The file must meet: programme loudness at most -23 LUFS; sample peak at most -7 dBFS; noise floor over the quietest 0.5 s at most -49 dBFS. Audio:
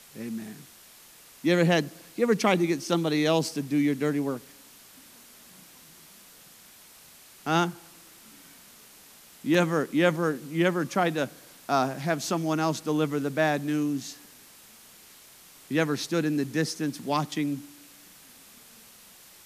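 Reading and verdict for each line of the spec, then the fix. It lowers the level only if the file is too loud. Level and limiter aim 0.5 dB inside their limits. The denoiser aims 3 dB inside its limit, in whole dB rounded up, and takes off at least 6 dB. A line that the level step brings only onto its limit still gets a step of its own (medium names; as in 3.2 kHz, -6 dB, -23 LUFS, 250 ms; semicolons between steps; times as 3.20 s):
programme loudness -27.0 LUFS: pass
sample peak -7.5 dBFS: pass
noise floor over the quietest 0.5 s -52 dBFS: pass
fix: none needed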